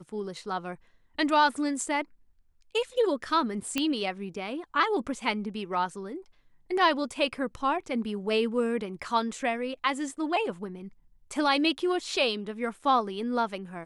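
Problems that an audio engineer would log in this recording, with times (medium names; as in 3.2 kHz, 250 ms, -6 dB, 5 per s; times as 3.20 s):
3.78 s: pop -12 dBFS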